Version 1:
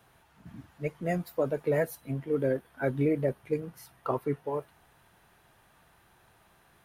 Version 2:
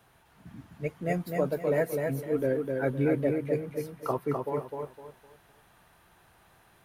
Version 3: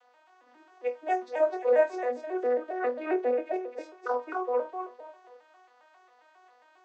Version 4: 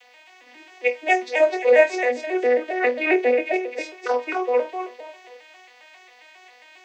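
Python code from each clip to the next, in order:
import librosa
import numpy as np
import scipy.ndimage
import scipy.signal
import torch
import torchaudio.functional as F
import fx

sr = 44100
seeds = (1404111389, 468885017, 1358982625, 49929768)

y1 = fx.echo_feedback(x, sr, ms=255, feedback_pct=30, wet_db=-4.0)
y2 = fx.vocoder_arp(y1, sr, chord='major triad', root=59, every_ms=135)
y2 = scipy.signal.sosfilt(scipy.signal.butter(4, 520.0, 'highpass', fs=sr, output='sos'), y2)
y2 = fx.room_flutter(y2, sr, wall_m=4.2, rt60_s=0.2)
y2 = y2 * librosa.db_to_amplitude(7.0)
y3 = fx.high_shelf_res(y2, sr, hz=1700.0, db=8.5, q=3.0)
y3 = y3 * librosa.db_to_amplitude(8.5)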